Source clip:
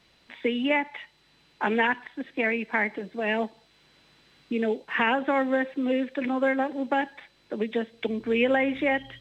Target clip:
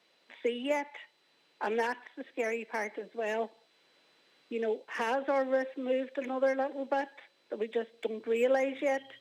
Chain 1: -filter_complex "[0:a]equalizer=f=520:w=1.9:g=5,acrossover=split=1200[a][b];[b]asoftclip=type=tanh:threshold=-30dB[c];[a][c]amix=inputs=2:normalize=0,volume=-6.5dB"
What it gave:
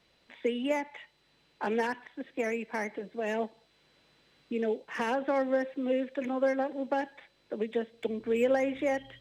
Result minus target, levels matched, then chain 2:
250 Hz band +4.0 dB
-filter_complex "[0:a]highpass=310,equalizer=f=520:w=1.9:g=5,acrossover=split=1200[a][b];[b]asoftclip=type=tanh:threshold=-30dB[c];[a][c]amix=inputs=2:normalize=0,volume=-6.5dB"

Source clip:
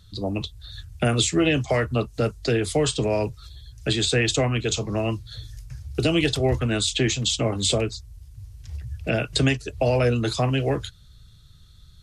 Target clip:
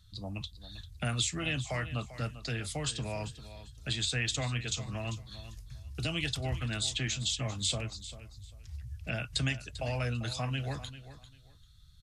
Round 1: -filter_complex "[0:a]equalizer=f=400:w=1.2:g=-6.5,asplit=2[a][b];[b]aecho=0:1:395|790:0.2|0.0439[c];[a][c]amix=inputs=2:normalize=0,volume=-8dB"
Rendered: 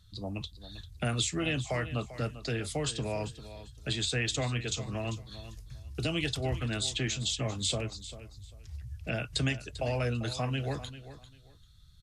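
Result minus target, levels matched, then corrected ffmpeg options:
500 Hz band +4.0 dB
-filter_complex "[0:a]equalizer=f=400:w=1.2:g=-15,asplit=2[a][b];[b]aecho=0:1:395|790:0.2|0.0439[c];[a][c]amix=inputs=2:normalize=0,volume=-8dB"

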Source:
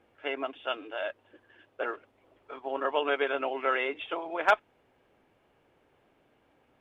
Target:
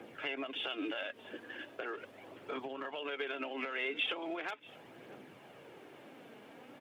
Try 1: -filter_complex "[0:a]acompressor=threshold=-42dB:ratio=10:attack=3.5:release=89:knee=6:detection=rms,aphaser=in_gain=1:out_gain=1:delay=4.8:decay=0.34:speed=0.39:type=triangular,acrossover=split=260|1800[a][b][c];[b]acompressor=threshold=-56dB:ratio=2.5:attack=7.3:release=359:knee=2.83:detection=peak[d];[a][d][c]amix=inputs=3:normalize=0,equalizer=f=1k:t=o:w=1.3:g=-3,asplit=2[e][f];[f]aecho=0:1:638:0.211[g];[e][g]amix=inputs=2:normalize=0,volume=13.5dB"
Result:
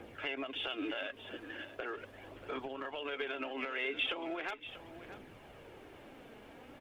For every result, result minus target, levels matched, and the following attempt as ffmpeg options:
echo-to-direct +9 dB; 125 Hz band +5.0 dB
-filter_complex "[0:a]acompressor=threshold=-42dB:ratio=10:attack=3.5:release=89:knee=6:detection=rms,aphaser=in_gain=1:out_gain=1:delay=4.8:decay=0.34:speed=0.39:type=triangular,acrossover=split=260|1800[a][b][c];[b]acompressor=threshold=-56dB:ratio=2.5:attack=7.3:release=359:knee=2.83:detection=peak[d];[a][d][c]amix=inputs=3:normalize=0,equalizer=f=1k:t=o:w=1.3:g=-3,asplit=2[e][f];[f]aecho=0:1:638:0.075[g];[e][g]amix=inputs=2:normalize=0,volume=13.5dB"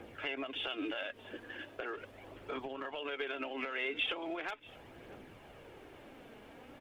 125 Hz band +4.5 dB
-filter_complex "[0:a]acompressor=threshold=-42dB:ratio=10:attack=3.5:release=89:knee=6:detection=rms,aphaser=in_gain=1:out_gain=1:delay=4.8:decay=0.34:speed=0.39:type=triangular,acrossover=split=260|1800[a][b][c];[b]acompressor=threshold=-56dB:ratio=2.5:attack=7.3:release=359:knee=2.83:detection=peak[d];[a][d][c]amix=inputs=3:normalize=0,highpass=f=130:w=0.5412,highpass=f=130:w=1.3066,equalizer=f=1k:t=o:w=1.3:g=-3,asplit=2[e][f];[f]aecho=0:1:638:0.075[g];[e][g]amix=inputs=2:normalize=0,volume=13.5dB"

